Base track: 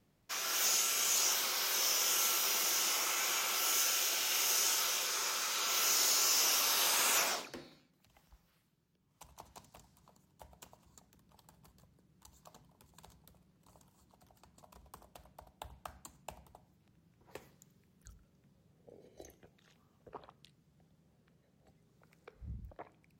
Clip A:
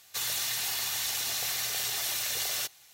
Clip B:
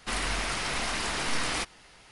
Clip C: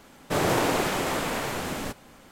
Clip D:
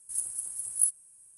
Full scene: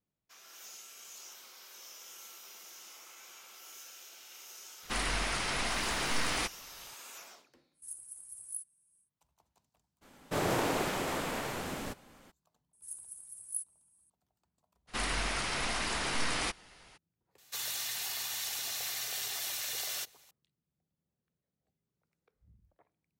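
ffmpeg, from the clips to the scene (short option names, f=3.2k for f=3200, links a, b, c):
-filter_complex "[2:a]asplit=2[a][b];[4:a]asplit=2[c][d];[0:a]volume=-18.5dB[e];[c]acompressor=threshold=-31dB:ratio=2:attack=62:release=972:knee=1:detection=rms[f];[1:a]lowshelf=f=120:g=-8.5[g];[a]atrim=end=2.11,asetpts=PTS-STARTPTS,volume=-2.5dB,afade=t=in:d=0.004:c=hsin,afade=t=out:st=2.106:d=0.004:c=hsin,adelay=4830[h];[f]atrim=end=1.37,asetpts=PTS-STARTPTS,volume=-11.5dB,afade=t=in:d=0.1,afade=t=out:st=1.27:d=0.1,adelay=7730[i];[3:a]atrim=end=2.31,asetpts=PTS-STARTPTS,volume=-7dB,afade=t=in:d=0.02,afade=t=out:st=2.29:d=0.02,adelay=10010[j];[d]atrim=end=1.37,asetpts=PTS-STARTPTS,volume=-12.5dB,afade=t=in:d=0.004:c=hsin,afade=t=out:st=1.366:d=0.004:c=hsin,adelay=12730[k];[b]atrim=end=2.11,asetpts=PTS-STARTPTS,volume=-3dB,afade=t=in:d=0.02,afade=t=out:st=2.09:d=0.02,adelay=14870[l];[g]atrim=end=2.93,asetpts=PTS-STARTPTS,volume=-5.5dB,afade=t=in:d=0.004:c=hsin,afade=t=out:st=2.926:d=0.004:c=hsin,adelay=17380[m];[e][h][i][j][k][l][m]amix=inputs=7:normalize=0"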